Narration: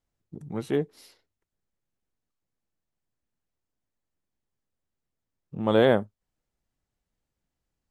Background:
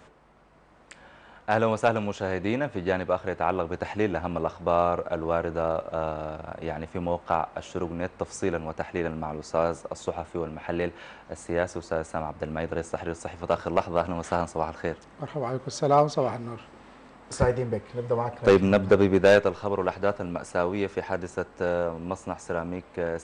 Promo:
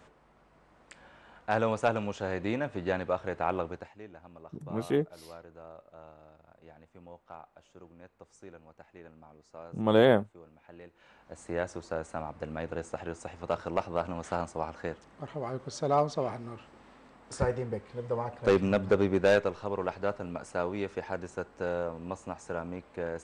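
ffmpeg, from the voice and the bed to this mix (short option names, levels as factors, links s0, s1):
-filter_complex "[0:a]adelay=4200,volume=0.841[s0];[1:a]volume=3.76,afade=t=out:st=3.62:d=0.28:silence=0.133352,afade=t=in:st=10.94:d=0.57:silence=0.158489[s1];[s0][s1]amix=inputs=2:normalize=0"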